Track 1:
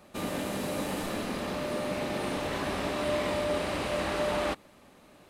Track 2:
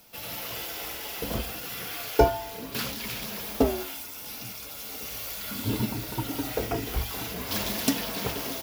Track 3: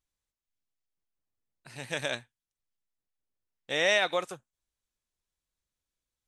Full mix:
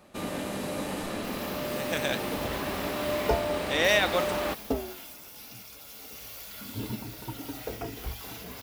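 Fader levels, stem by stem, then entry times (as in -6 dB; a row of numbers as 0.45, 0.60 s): -0.5, -7.0, +1.5 dB; 0.00, 1.10, 0.00 s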